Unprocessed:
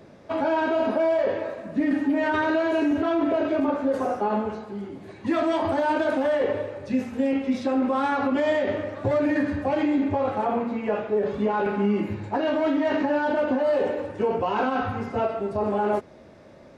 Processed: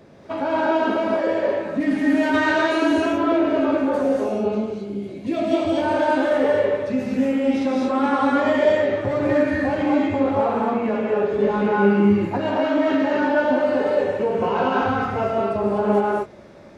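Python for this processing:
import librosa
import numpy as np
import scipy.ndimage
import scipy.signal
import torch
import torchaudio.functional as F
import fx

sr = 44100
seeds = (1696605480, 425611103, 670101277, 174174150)

y = fx.high_shelf(x, sr, hz=3500.0, db=10.5, at=(1.8, 2.93))
y = fx.spec_box(y, sr, start_s=4.01, length_s=1.78, low_hz=720.0, high_hz=2100.0, gain_db=-11)
y = fx.rev_gated(y, sr, seeds[0], gate_ms=270, shape='rising', drr_db=-3.0)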